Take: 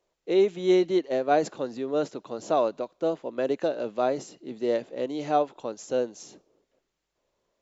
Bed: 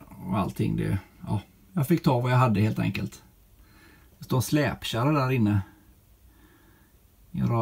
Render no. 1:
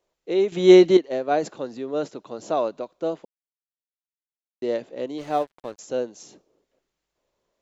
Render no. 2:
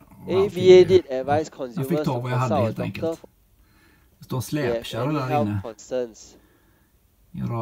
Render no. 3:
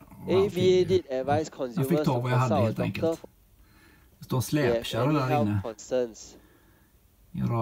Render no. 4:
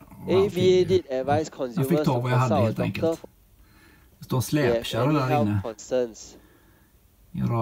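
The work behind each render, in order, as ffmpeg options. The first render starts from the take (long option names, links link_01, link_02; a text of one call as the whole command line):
ffmpeg -i in.wav -filter_complex "[0:a]asettb=1/sr,asplit=3[link_01][link_02][link_03];[link_01]atrim=end=5.184[link_04];[link_02]atrim=start=5.18:end=5.79,asetpts=PTS-STARTPTS,afade=type=in:duration=0.004:curve=qsin,afade=type=out:start_time=0.606:duration=0.004:curve=qsin,aeval=exprs='sgn(val(0))*max(abs(val(0))-0.00708,0)':channel_layout=same[link_05];[link_03]atrim=start=5.786[link_06];[link_04][link_05]acrossfade=duration=0.004:curve1=hsin:curve2=qsin[link_07];[link_07][link_06]acrossfade=duration=0.004:curve1=qsin:curve2=hsin,asplit=5[link_08][link_09][link_10][link_11][link_12];[link_08]atrim=end=0.522[link_13];[link_09]atrim=start=0.518:end=0.972,asetpts=PTS-STARTPTS,volume=9.5dB[link_14];[link_10]atrim=start=0.968:end=3.25,asetpts=PTS-STARTPTS,afade=type=out:start_time=2.278:duration=0.004:curve=hsin[link_15];[link_11]atrim=start=3.25:end=4.62,asetpts=PTS-STARTPTS,volume=0[link_16];[link_12]atrim=start=4.62,asetpts=PTS-STARTPTS,afade=type=in:duration=0.004:curve=hsin[link_17];[link_13][link_14]acrossfade=duration=0.004:curve1=hsin:curve2=hsin[link_18];[link_15][link_16][link_17]concat=n=3:v=0:a=1[link_19];[link_18][link_19]acrossfade=duration=0.004:curve1=hsin:curve2=hsin" out.wav
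ffmpeg -i in.wav -i bed.wav -filter_complex "[1:a]volume=-2.5dB[link_01];[0:a][link_01]amix=inputs=2:normalize=0" out.wav
ffmpeg -i in.wav -filter_complex "[0:a]acrossover=split=310|3000[link_01][link_02][link_03];[link_02]acompressor=threshold=-21dB:ratio=6[link_04];[link_01][link_04][link_03]amix=inputs=3:normalize=0,alimiter=limit=-13.5dB:level=0:latency=1:release=497" out.wav
ffmpeg -i in.wav -af "volume=2.5dB" out.wav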